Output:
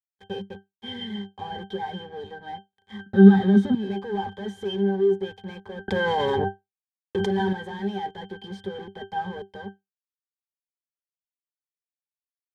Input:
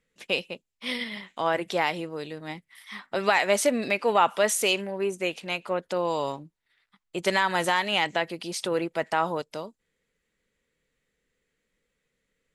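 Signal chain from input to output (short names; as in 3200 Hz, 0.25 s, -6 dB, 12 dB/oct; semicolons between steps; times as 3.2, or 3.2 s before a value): fuzz box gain 40 dB, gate -41 dBFS; octave resonator G, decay 0.17 s; 3.06–3.75 small resonant body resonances 210/1300/3700 Hz, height 17 dB, ringing for 25 ms; 5.88–7.53 fast leveller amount 100%; gain -2 dB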